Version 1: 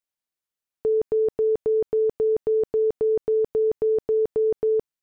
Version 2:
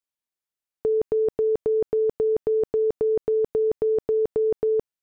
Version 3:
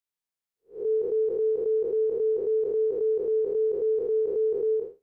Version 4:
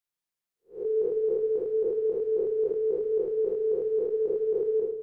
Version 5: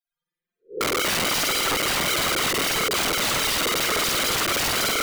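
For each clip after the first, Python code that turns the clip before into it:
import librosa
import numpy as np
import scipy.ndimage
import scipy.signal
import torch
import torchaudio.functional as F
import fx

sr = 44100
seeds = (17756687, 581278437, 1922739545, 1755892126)

y1 = fx.level_steps(x, sr, step_db=12)
y1 = F.gain(torch.from_numpy(y1), 3.0).numpy()
y2 = fx.spec_blur(y1, sr, span_ms=174.0)
y3 = fx.rider(y2, sr, range_db=10, speed_s=0.5)
y3 = fx.room_shoebox(y3, sr, seeds[0], volume_m3=1800.0, walls='mixed', distance_m=0.88)
y4 = fx.spec_topn(y3, sr, count=16)
y4 = fx.rev_spring(y4, sr, rt60_s=1.2, pass_ms=(49,), chirp_ms=75, drr_db=-9.5)
y4 = (np.mod(10.0 ** (27.0 / 20.0) * y4 + 1.0, 2.0) - 1.0) / 10.0 ** (27.0 / 20.0)
y4 = F.gain(torch.from_numpy(y4), 8.5).numpy()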